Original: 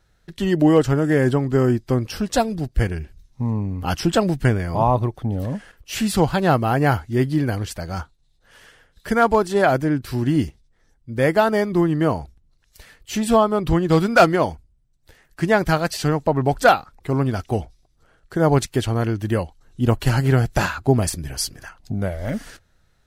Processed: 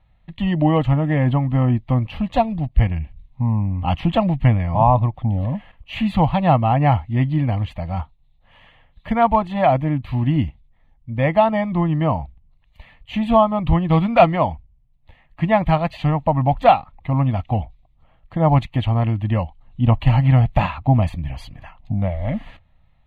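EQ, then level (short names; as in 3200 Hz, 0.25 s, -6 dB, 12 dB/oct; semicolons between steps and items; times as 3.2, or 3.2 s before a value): air absorption 270 m; fixed phaser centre 1500 Hz, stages 6; +5.5 dB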